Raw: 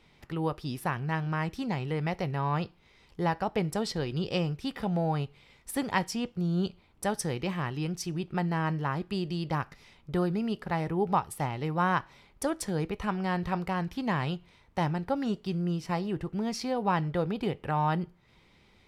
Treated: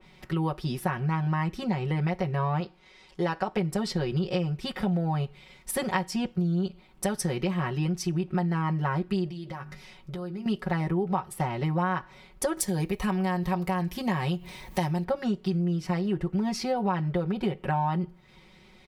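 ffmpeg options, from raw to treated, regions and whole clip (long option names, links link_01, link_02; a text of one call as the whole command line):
ffmpeg -i in.wav -filter_complex "[0:a]asettb=1/sr,asplit=3[link_01][link_02][link_03];[link_01]atrim=end=2.604[link_04];[link_02]atrim=start=2.6:end=3.57,asetpts=PTS-STARTPTS,afade=type=in:duration=0.004:curve=qsin,afade=type=out:start_time=0.966:duration=0.004:curve=qsin,lowpass=9000,bass=frequency=250:gain=-8,treble=frequency=4000:gain=2[link_05];[link_03]atrim=start=3.566[link_06];[link_04][link_05]acrossfade=duration=0.004:curve1=hsin:curve2=qsin[link_07];[link_07][link_06]acrossfade=duration=0.004:curve1=qsin:curve2=hsin,asettb=1/sr,asplit=3[link_08][link_09][link_10];[link_08]atrim=end=9.284[link_11];[link_09]atrim=start=9.28:end=10.46,asetpts=PTS-STARTPTS,afade=type=in:duration=0.004:curve=qsin,afade=type=out:start_time=1.176:duration=0.004:curve=qsin,bandreject=frequency=50:width_type=h:width=6,bandreject=frequency=100:width_type=h:width=6,bandreject=frequency=150:width_type=h:width=6,bandreject=frequency=200:width_type=h:width=6,bandreject=frequency=250:width_type=h:width=6,bandreject=frequency=300:width_type=h:width=6,bandreject=frequency=350:width_type=h:width=6,bandreject=frequency=400:width_type=h:width=6,acompressor=threshold=-42dB:ratio=5:attack=3.2:release=140:knee=1:detection=peak,asplit=2[link_12][link_13];[link_13]adelay=15,volume=-11dB[link_14];[link_12][link_14]amix=inputs=2:normalize=0,atrim=end_sample=52038[link_15];[link_10]atrim=start=10.456[link_16];[link_11][link_15]acrossfade=duration=0.004:curve1=hsin:curve2=qsin[link_17];[link_17][link_16]acrossfade=duration=0.004:curve1=qsin:curve2=hsin,asettb=1/sr,asplit=3[link_18][link_19][link_20];[link_18]atrim=end=12.574[link_21];[link_19]atrim=start=12.57:end=15.04,asetpts=PTS-STARTPTS,afade=type=in:duration=0.004:curve=qsin,afade=type=out:start_time=2.466:duration=0.004:curve=qsin,aemphasis=mode=production:type=50fm,bandreject=frequency=1400:width=6.4,acompressor=mode=upward:threshold=-36dB:ratio=2.5:attack=3.2:release=140:knee=2.83:detection=peak[link_22];[link_20]atrim=start=15.036[link_23];[link_21][link_22]acrossfade=duration=0.004:curve1=hsin:curve2=qsin[link_24];[link_24][link_23]acrossfade=duration=0.004:curve1=qsin:curve2=hsin,aecho=1:1:5.4:0.96,acompressor=threshold=-27dB:ratio=6,adynamicequalizer=threshold=0.00316:dfrequency=2500:dqfactor=0.7:tfrequency=2500:tqfactor=0.7:attack=5:release=100:ratio=0.375:range=2.5:mode=cutabove:tftype=highshelf,volume=3.5dB" out.wav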